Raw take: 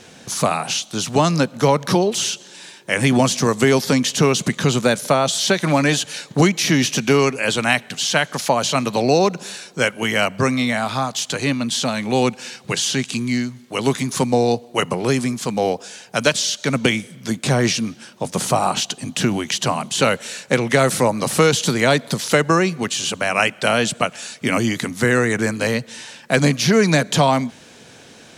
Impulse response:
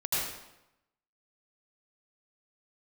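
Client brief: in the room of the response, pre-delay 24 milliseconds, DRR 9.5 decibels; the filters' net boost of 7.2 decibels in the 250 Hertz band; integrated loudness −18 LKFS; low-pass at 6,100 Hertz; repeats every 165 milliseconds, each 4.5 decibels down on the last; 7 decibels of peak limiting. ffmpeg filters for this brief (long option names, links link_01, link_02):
-filter_complex "[0:a]lowpass=6100,equalizer=frequency=250:width_type=o:gain=8.5,alimiter=limit=-6dB:level=0:latency=1,aecho=1:1:165|330|495|660|825|990|1155|1320|1485:0.596|0.357|0.214|0.129|0.0772|0.0463|0.0278|0.0167|0.01,asplit=2[link_01][link_02];[1:a]atrim=start_sample=2205,adelay=24[link_03];[link_02][link_03]afir=irnorm=-1:irlink=0,volume=-17.5dB[link_04];[link_01][link_04]amix=inputs=2:normalize=0,volume=-2.5dB"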